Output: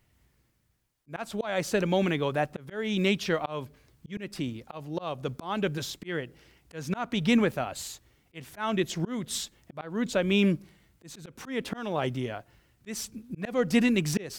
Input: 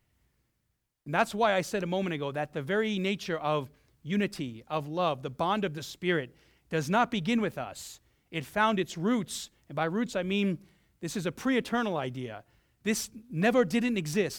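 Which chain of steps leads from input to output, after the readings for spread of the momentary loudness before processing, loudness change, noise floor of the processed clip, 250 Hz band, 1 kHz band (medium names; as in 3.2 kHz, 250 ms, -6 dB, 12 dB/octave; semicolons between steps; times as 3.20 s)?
12 LU, +0.5 dB, -69 dBFS, +1.5 dB, -4.5 dB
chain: slow attack 316 ms; trim +5 dB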